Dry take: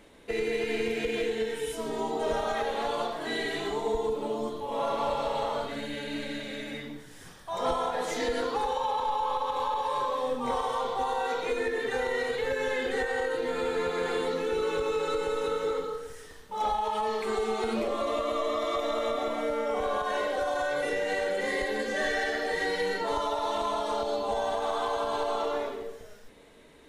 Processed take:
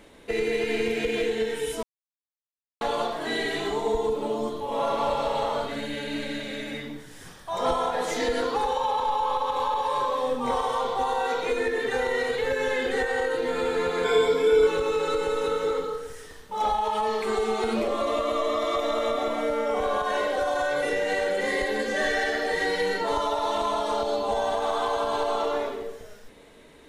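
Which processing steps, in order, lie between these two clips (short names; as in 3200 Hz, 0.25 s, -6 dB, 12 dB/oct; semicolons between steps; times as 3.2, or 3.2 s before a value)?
1.83–2.81 mute; 14.04–14.67 ripple EQ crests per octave 1.7, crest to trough 17 dB; gain +3.5 dB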